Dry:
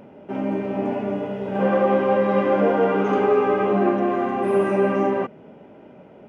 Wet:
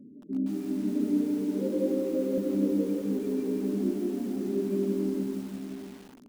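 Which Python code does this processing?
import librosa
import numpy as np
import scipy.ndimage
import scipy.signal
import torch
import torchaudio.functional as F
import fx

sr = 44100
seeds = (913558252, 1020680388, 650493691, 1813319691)

y = fx.formant_cascade(x, sr, vowel='i')
y = fx.filter_lfo_notch(y, sr, shape='saw_down', hz=6.1, low_hz=700.0, high_hz=3300.0, q=2.4)
y = fx.spec_topn(y, sr, count=16)
y = fx.rider(y, sr, range_db=4, speed_s=0.5)
y = fx.graphic_eq_31(y, sr, hz=(200, 315, 500), db=(-9, 7, 11), at=(0.95, 2.38))
y = fx.echo_multitap(y, sr, ms=(101, 202, 639), db=(-11.0, -17.5, -10.0))
y = fx.echo_crushed(y, sr, ms=169, feedback_pct=55, bits=8, wet_db=-3.5)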